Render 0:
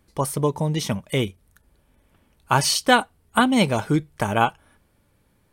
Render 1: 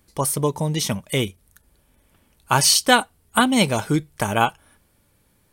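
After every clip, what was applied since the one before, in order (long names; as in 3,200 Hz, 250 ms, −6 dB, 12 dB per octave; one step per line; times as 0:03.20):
high-shelf EQ 3,900 Hz +8.5 dB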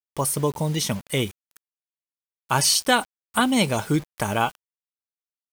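in parallel at −2 dB: brickwall limiter −11.5 dBFS, peak gain reduction 10 dB
on the sum: bit reduction 6 bits
level −6.5 dB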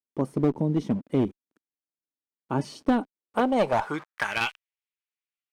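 band-pass filter sweep 280 Hz → 2,400 Hz, 0:03.08–0:04.43
asymmetric clip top −29 dBFS, bottom −20 dBFS
level +8 dB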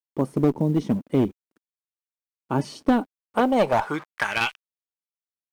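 log-companded quantiser 8 bits
level +3 dB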